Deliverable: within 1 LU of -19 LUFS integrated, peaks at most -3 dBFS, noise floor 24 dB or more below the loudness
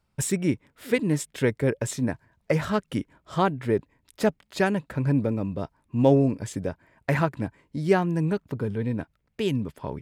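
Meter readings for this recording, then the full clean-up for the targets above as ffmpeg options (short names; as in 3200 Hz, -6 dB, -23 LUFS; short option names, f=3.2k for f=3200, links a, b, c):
loudness -26.5 LUFS; peak -6.5 dBFS; loudness target -19.0 LUFS
-> -af "volume=7.5dB,alimiter=limit=-3dB:level=0:latency=1"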